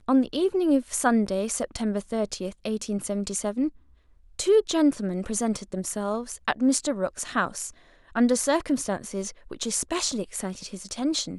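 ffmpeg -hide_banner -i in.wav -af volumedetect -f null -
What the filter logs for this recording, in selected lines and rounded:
mean_volume: -26.4 dB
max_volume: -7.9 dB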